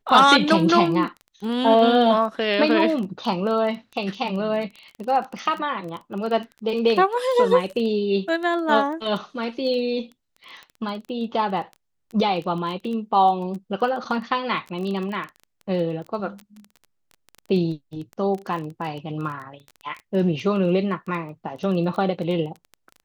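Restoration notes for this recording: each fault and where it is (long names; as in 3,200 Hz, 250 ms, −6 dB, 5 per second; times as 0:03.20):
surface crackle 15 per second −29 dBFS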